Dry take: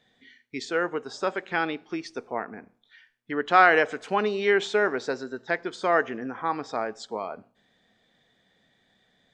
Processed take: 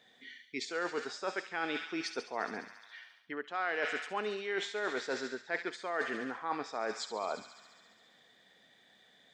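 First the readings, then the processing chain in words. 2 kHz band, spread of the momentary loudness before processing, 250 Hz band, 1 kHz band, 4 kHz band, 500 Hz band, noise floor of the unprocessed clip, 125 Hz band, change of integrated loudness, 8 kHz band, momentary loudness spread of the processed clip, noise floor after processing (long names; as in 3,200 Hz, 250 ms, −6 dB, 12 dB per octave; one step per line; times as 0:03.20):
−10.0 dB, 15 LU, −9.5 dB, −12.5 dB, −4.5 dB, −11.0 dB, −68 dBFS, −14.0 dB, −11.0 dB, −2.0 dB, 12 LU, −65 dBFS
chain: delay with a high-pass on its return 69 ms, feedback 77%, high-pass 2,500 Hz, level −7 dB
reversed playback
downward compressor 12 to 1, threshold −33 dBFS, peak gain reduction 21.5 dB
reversed playback
high-pass filter 390 Hz 6 dB per octave
level +3 dB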